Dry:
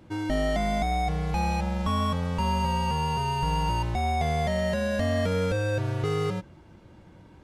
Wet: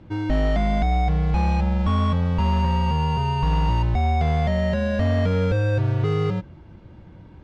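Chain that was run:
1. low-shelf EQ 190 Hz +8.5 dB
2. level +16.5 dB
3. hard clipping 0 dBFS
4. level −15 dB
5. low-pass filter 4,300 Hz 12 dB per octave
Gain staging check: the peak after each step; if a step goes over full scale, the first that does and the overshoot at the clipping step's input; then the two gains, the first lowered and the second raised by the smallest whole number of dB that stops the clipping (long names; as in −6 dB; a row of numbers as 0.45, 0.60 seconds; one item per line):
−11.0, +5.5, 0.0, −15.0, −15.0 dBFS
step 2, 5.5 dB
step 2 +10.5 dB, step 4 −9 dB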